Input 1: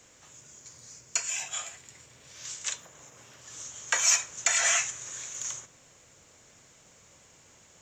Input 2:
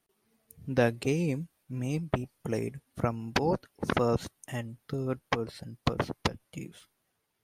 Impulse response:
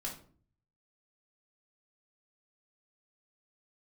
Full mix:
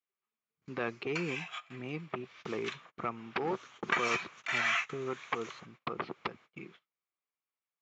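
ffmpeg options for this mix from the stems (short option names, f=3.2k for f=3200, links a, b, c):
-filter_complex "[0:a]volume=-4.5dB[a];[1:a]agate=range=-6dB:threshold=-49dB:ratio=16:detection=peak,equalizer=f=380:w=5.8:g=9.5,alimiter=limit=-18dB:level=0:latency=1:release=37,volume=-3dB,asplit=2[b][c];[c]apad=whole_len=344483[d];[a][d]sidechaingate=range=-16dB:threshold=-57dB:ratio=16:detection=peak[e];[e][b]amix=inputs=2:normalize=0,aeval=exprs='clip(val(0),-1,0.0668)':c=same,highpass=230,equalizer=f=270:t=q:w=4:g=-5,equalizer=f=390:t=q:w=4:g=-4,equalizer=f=560:t=q:w=4:g=-6,equalizer=f=1.2k:t=q:w=4:g=9,equalizer=f=2.3k:t=q:w=4:g=6,lowpass=f=3.8k:w=0.5412,lowpass=f=3.8k:w=1.3066,agate=range=-20dB:threshold=-55dB:ratio=16:detection=peak"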